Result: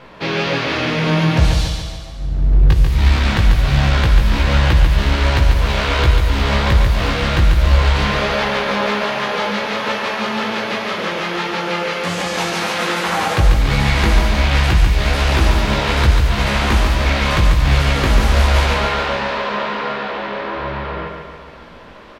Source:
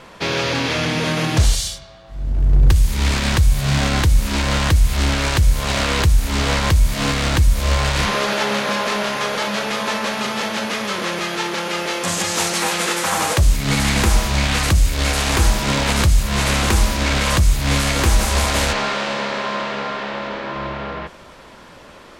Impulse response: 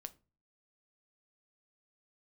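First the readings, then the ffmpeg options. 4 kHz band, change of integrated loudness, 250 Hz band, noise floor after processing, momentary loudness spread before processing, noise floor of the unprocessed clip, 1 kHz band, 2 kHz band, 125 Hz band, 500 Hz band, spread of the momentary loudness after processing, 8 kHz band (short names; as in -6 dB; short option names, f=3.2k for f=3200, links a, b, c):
-0.5 dB, +2.0 dB, +1.5 dB, -34 dBFS, 7 LU, -42 dBFS, +2.5 dB, +2.0 dB, +3.0 dB, +2.5 dB, 8 LU, -8.5 dB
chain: -filter_complex "[0:a]flanger=delay=15.5:depth=3.9:speed=1.3,aecho=1:1:142|284|426|568|710|852|994:0.562|0.304|0.164|0.0885|0.0478|0.0258|0.0139,asplit=2[a][b];[1:a]atrim=start_sample=2205,asetrate=22932,aresample=44100,lowpass=4.8k[c];[b][c]afir=irnorm=-1:irlink=0,volume=7.5dB[d];[a][d]amix=inputs=2:normalize=0,volume=-5.5dB"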